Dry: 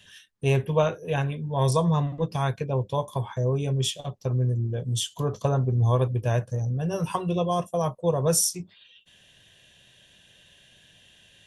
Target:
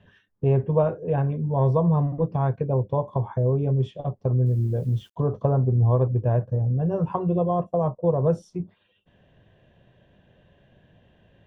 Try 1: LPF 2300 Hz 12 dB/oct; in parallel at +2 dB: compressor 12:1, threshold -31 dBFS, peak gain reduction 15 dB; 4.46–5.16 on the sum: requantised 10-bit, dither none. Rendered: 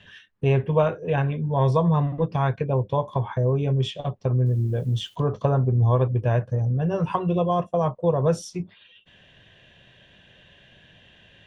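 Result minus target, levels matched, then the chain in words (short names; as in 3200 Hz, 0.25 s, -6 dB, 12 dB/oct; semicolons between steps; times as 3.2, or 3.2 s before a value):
2000 Hz band +10.5 dB
LPF 860 Hz 12 dB/oct; in parallel at +2 dB: compressor 12:1, threshold -31 dBFS, peak gain reduction 14 dB; 4.46–5.16 on the sum: requantised 10-bit, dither none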